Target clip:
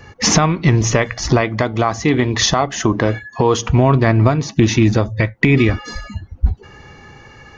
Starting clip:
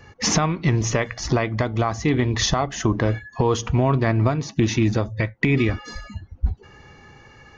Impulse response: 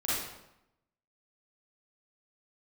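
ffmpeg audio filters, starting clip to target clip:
-filter_complex "[0:a]asettb=1/sr,asplit=3[s0][s1][s2];[s0]atrim=end=1.414[s3];[s1]atrim=start=1.41:end=3.69,asetpts=PTS-STARTPTS,afade=t=in:d=0.004:c=qsin,afade=t=out:st=2.276:d=0.004:c=qsin,lowshelf=f=90:g=-12[s4];[s2]atrim=start=3.686[s5];[s3][s4]acrossfade=d=0.004:c1=hsin:c2=qsin[s6];[s6][s5]acrossfade=d=0.004:c1=qsin:c2=hsin,volume=2.11"

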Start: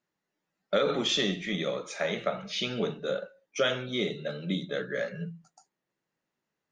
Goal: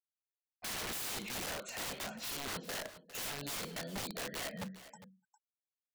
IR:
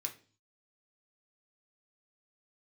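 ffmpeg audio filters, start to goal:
-af "afftfilt=real='re*gte(hypot(re,im),0.00316)':imag='im*gte(hypot(re,im),0.00316)':win_size=1024:overlap=0.75,acompressor=mode=upward:threshold=0.02:ratio=2.5,asetrate=49833,aresample=44100,aeval=exprs='(mod(28.2*val(0)+1,2)-1)/28.2':c=same,aecho=1:1:405:0.178,volume=0.501"

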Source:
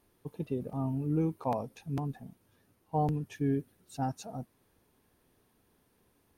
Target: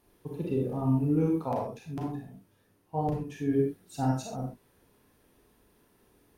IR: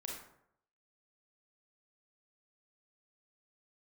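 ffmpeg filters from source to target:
-filter_complex "[0:a]asplit=3[s0][s1][s2];[s0]afade=t=out:st=1.41:d=0.02[s3];[s1]flanger=delay=6.9:depth=4.8:regen=-55:speed=1.3:shape=triangular,afade=t=in:st=1.41:d=0.02,afade=t=out:st=3.48:d=0.02[s4];[s2]afade=t=in:st=3.48:d=0.02[s5];[s3][s4][s5]amix=inputs=3:normalize=0[s6];[1:a]atrim=start_sample=2205,atrim=end_sample=6174[s7];[s6][s7]afir=irnorm=-1:irlink=0,volume=2.24"

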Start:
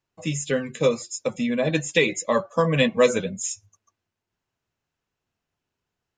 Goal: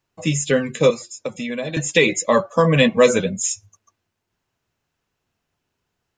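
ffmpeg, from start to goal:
-filter_complex "[0:a]asplit=2[s0][s1];[s1]alimiter=limit=0.2:level=0:latency=1:release=18,volume=0.75[s2];[s0][s2]amix=inputs=2:normalize=0,asettb=1/sr,asplit=3[s3][s4][s5];[s3]atrim=end=0.904[s6];[s4]atrim=start=0.9:end=1.77,asetpts=PTS-STARTPTS,afade=t=in:d=0.004:c=qsin,afade=t=out:st=0.866:d=0.004:c=qsin,acrossover=split=380|2600[s7][s8][s9];[s7]acompressor=threshold=0.02:ratio=4[s10];[s8]acompressor=threshold=0.0316:ratio=4[s11];[s9]acompressor=threshold=0.0126:ratio=4[s12];[s10][s11][s12]amix=inputs=3:normalize=0[s13];[s5]atrim=start=1.766[s14];[s6][s13]acrossfade=d=0.004:c1=hsin:c2=qsin[s15];[s15][s14]acrossfade=d=0.004:c1=qsin:c2=hsin,volume=1.19"

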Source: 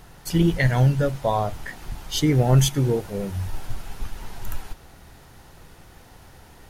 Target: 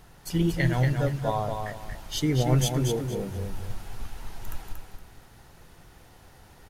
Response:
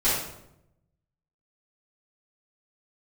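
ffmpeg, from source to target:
-af "aecho=1:1:233|466|699|932:0.531|0.149|0.0416|0.0117,volume=0.531"

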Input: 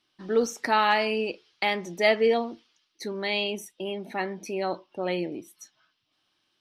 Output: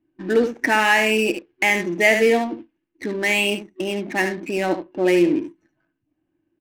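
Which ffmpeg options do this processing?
-filter_complex "[0:a]lowshelf=f=230:g=5.5,asplit=2[s0][s1];[s1]aecho=0:1:74:0.335[s2];[s0][s2]amix=inputs=2:normalize=0,acrossover=split=3300[s3][s4];[s4]acompressor=threshold=0.00398:ratio=4:attack=1:release=60[s5];[s3][s5]amix=inputs=2:normalize=0,superequalizer=6b=3.16:10b=0.708:11b=2.51:12b=2.51:15b=1.58,asplit=2[s6][s7];[s7]alimiter=limit=0.211:level=0:latency=1,volume=1.12[s8];[s6][s8]amix=inputs=2:normalize=0,adynamicsmooth=sensitivity=5.5:basefreq=510,volume=0.794"

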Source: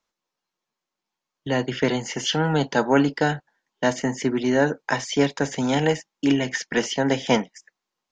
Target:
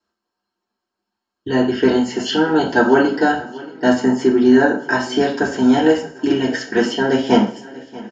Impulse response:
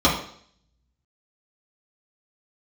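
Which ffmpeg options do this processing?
-filter_complex "[0:a]aecho=1:1:633|1266|1899|2532|3165:0.1|0.058|0.0336|0.0195|0.0113[s0];[1:a]atrim=start_sample=2205,asetrate=57330,aresample=44100[s1];[s0][s1]afir=irnorm=-1:irlink=0,volume=0.2"

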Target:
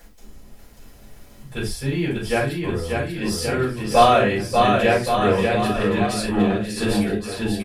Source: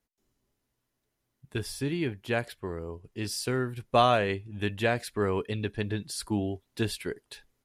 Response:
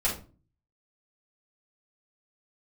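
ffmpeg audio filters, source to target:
-filter_complex "[0:a]acompressor=mode=upward:threshold=0.0112:ratio=2.5,aecho=1:1:590|1121|1599|2029|2416:0.631|0.398|0.251|0.158|0.1[s0];[1:a]atrim=start_sample=2205,afade=t=out:st=0.16:d=0.01,atrim=end_sample=7497[s1];[s0][s1]afir=irnorm=-1:irlink=0,volume=0.841"

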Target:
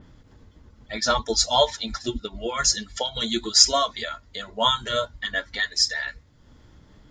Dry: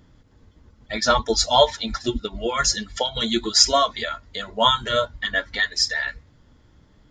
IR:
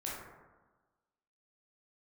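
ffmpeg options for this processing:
-af "acompressor=mode=upward:threshold=0.0126:ratio=2.5,adynamicequalizer=threshold=0.0282:dfrequency=4100:dqfactor=0.7:tfrequency=4100:tqfactor=0.7:attack=5:release=100:ratio=0.375:range=3:mode=boostabove:tftype=highshelf,volume=0.631"

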